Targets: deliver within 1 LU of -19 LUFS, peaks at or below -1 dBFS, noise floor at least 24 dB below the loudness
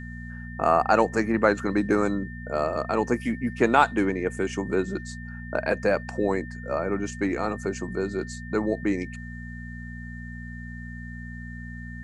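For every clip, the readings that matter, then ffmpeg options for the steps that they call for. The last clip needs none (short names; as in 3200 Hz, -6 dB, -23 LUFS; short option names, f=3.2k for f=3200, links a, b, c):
hum 60 Hz; harmonics up to 240 Hz; hum level -36 dBFS; steady tone 1800 Hz; tone level -42 dBFS; loudness -25.5 LUFS; peak -4.5 dBFS; loudness target -19.0 LUFS
-> -af "bandreject=f=60:t=h:w=4,bandreject=f=120:t=h:w=4,bandreject=f=180:t=h:w=4,bandreject=f=240:t=h:w=4"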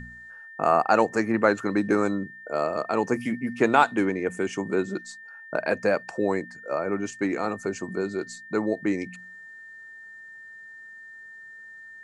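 hum none; steady tone 1800 Hz; tone level -42 dBFS
-> -af "bandreject=f=1.8k:w=30"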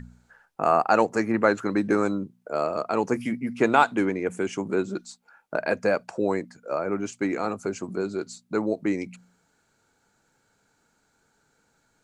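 steady tone none; loudness -26.0 LUFS; peak -5.0 dBFS; loudness target -19.0 LUFS
-> -af "volume=7dB,alimiter=limit=-1dB:level=0:latency=1"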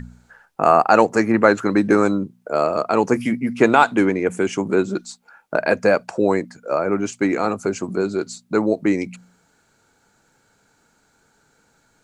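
loudness -19.5 LUFS; peak -1.0 dBFS; noise floor -62 dBFS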